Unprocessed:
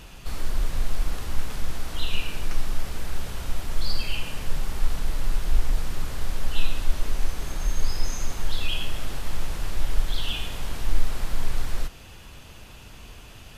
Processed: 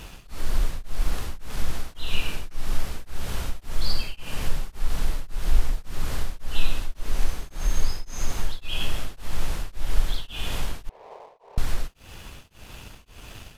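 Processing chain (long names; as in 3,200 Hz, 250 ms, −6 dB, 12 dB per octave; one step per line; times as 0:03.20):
0:10.89–0:11.58: elliptic band-pass filter 420–1,000 Hz
in parallel at −1 dB: downward compressor, threshold −25 dBFS, peak gain reduction 14 dB
on the sum: dead-zone distortion −50 dBFS
tremolo along a rectified sine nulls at 1.8 Hz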